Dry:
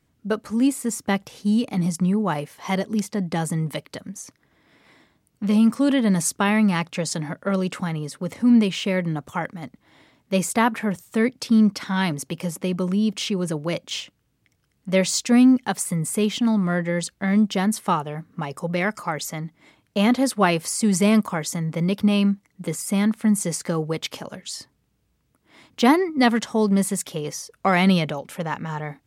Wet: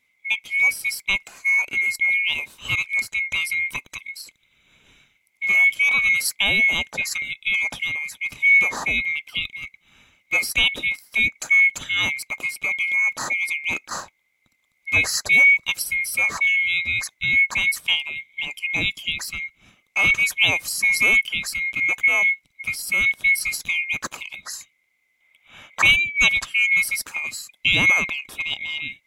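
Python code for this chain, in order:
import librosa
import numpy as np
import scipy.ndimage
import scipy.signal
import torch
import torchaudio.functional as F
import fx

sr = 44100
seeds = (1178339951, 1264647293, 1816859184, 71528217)

y = fx.band_swap(x, sr, width_hz=2000)
y = fx.spec_box(y, sr, start_s=25.21, length_s=0.62, low_hz=490.0, high_hz=3800.0, gain_db=8)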